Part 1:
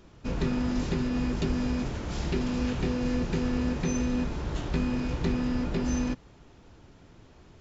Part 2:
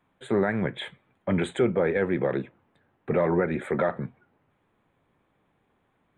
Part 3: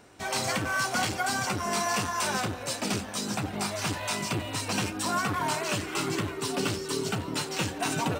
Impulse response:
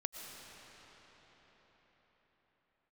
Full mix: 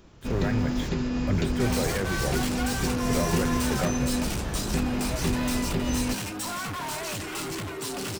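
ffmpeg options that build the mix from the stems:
-filter_complex "[0:a]volume=0.5dB[link_01];[1:a]lowshelf=frequency=150:width_type=q:width=1.5:gain=11.5,aeval=exprs='val(0)*gte(abs(val(0)),0.01)':channel_layout=same,volume=-6dB[link_02];[2:a]asoftclip=type=hard:threshold=-33.5dB,adelay=1400,volume=2dB[link_03];[link_01][link_02][link_03]amix=inputs=3:normalize=0,highshelf=frequency=6300:gain=4.5"

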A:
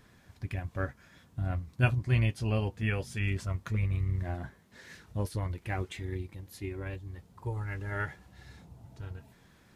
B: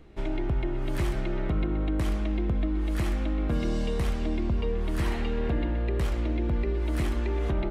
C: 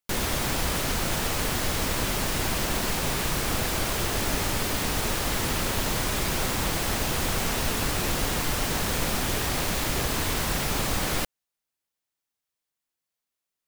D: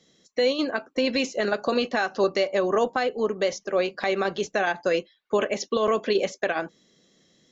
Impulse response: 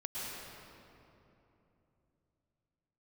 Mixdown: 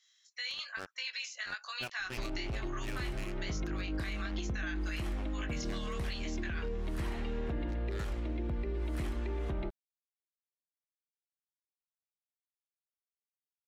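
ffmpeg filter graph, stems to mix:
-filter_complex "[0:a]highpass=280,acrusher=bits=4:mix=0:aa=0.5,volume=-7dB[link_01];[1:a]adelay=2000,volume=-5.5dB[link_02];[3:a]highpass=frequency=1400:width=0.5412,highpass=frequency=1400:width=1.3066,flanger=delay=18.5:depth=5.3:speed=1.1,volume=-2dB[link_03];[link_01][link_02][link_03]amix=inputs=3:normalize=0,alimiter=level_in=4dB:limit=-24dB:level=0:latency=1:release=112,volume=-4dB"

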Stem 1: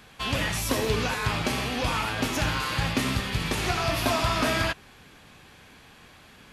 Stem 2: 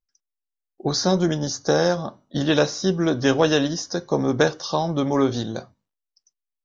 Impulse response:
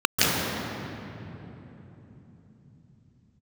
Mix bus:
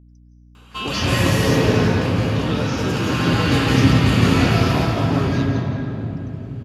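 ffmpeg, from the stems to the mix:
-filter_complex "[0:a]asoftclip=type=hard:threshold=-16dB,adelay=550,volume=2dB,afade=type=out:start_time=1.28:duration=0.55:silence=0.375837,afade=type=in:start_time=2.68:duration=0.69:silence=0.398107,afade=type=out:start_time=4.24:duration=0.54:silence=0.251189,asplit=2[link_01][link_02];[link_02]volume=-7dB[link_03];[1:a]alimiter=limit=-12.5dB:level=0:latency=1,volume=-7dB,asplit=2[link_04][link_05];[link_05]volume=-21.5dB[link_06];[2:a]atrim=start_sample=2205[link_07];[link_03][link_06]amix=inputs=2:normalize=0[link_08];[link_08][link_07]afir=irnorm=-1:irlink=0[link_09];[link_01][link_04][link_09]amix=inputs=3:normalize=0,aeval=exprs='val(0)+0.00501*(sin(2*PI*60*n/s)+sin(2*PI*2*60*n/s)/2+sin(2*PI*3*60*n/s)/3+sin(2*PI*4*60*n/s)/4+sin(2*PI*5*60*n/s)/5)':channel_layout=same"

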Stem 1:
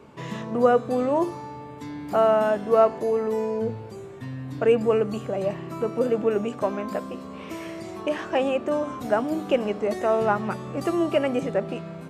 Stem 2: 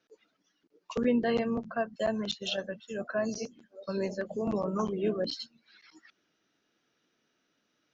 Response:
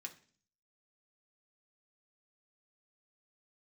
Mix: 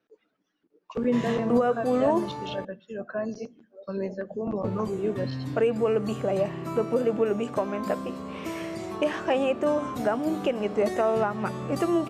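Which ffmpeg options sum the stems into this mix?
-filter_complex "[0:a]alimiter=limit=-16dB:level=0:latency=1:release=295,adelay=950,volume=1.5dB,asplit=3[link_01][link_02][link_03];[link_01]atrim=end=2.65,asetpts=PTS-STARTPTS,afade=type=out:start_time=2.646:duration=0.004:curve=hsin[link_04];[link_02]atrim=start=2.65:end=4.64,asetpts=PTS-STARTPTS,volume=0[link_05];[link_03]atrim=start=4.64,asetpts=PTS-STARTPTS,afade=type=in:duration=0.004:curve=hsin[link_06];[link_04][link_05][link_06]concat=n=3:v=0:a=1[link_07];[1:a]lowpass=frequency=1200:poles=1,volume=1dB,asplit=2[link_08][link_09];[link_09]volume=-8dB[link_10];[2:a]atrim=start_sample=2205[link_11];[link_10][link_11]afir=irnorm=-1:irlink=0[link_12];[link_07][link_08][link_12]amix=inputs=3:normalize=0"

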